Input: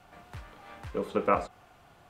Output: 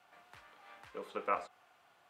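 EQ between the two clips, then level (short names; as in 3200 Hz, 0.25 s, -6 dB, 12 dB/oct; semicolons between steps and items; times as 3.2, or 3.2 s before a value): band-pass 5400 Hz, Q 0.52; bell 6400 Hz -12.5 dB 3 oct; +4.5 dB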